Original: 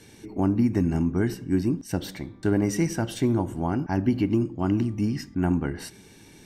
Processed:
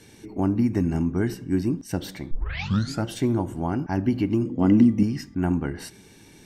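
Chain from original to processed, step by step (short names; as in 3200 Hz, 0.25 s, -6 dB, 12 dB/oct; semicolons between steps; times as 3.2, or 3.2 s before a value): 2.31 tape start 0.74 s; 4.46–5.03 small resonant body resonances 240/480/2000/3300 Hz, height 13 dB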